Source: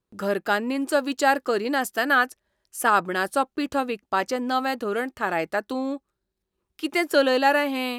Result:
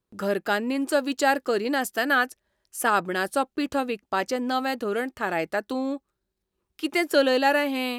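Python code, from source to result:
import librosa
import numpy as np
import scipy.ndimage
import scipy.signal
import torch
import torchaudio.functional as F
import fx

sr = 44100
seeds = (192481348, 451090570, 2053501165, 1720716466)

y = fx.dynamic_eq(x, sr, hz=1100.0, q=1.5, threshold_db=-34.0, ratio=4.0, max_db=-4)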